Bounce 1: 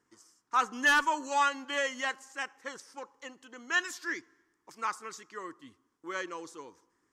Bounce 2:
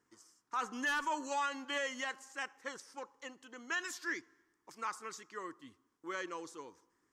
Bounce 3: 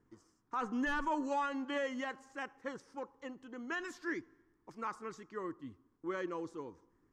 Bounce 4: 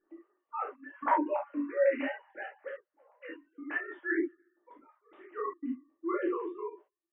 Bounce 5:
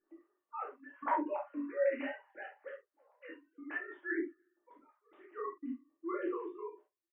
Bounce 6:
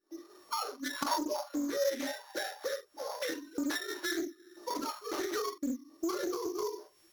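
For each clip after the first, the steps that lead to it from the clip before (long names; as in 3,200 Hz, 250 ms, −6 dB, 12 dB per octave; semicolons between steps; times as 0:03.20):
brickwall limiter −25 dBFS, peak gain reduction 8 dB; level −2.5 dB
spectral tilt −4 dB per octave
three sine waves on the formant tracks; gate pattern "xxxx..xx.xxx" 88 BPM −24 dB; convolution reverb, pre-delay 3 ms, DRR −5 dB
double-tracking delay 46 ms −13 dB; level −5.5 dB
samples sorted by size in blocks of 8 samples; camcorder AGC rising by 70 dB per second; highs frequency-modulated by the lows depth 0.23 ms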